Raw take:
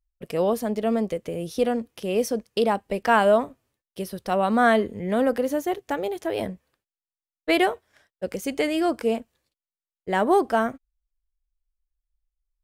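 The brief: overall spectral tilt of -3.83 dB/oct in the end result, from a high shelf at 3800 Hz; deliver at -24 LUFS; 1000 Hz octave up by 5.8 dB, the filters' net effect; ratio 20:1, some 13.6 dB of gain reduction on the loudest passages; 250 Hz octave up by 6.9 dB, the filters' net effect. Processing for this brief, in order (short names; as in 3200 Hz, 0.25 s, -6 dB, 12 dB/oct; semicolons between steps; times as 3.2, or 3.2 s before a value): bell 250 Hz +8 dB; bell 1000 Hz +8 dB; high shelf 3800 Hz -7 dB; compressor 20:1, threshold -22 dBFS; gain +4.5 dB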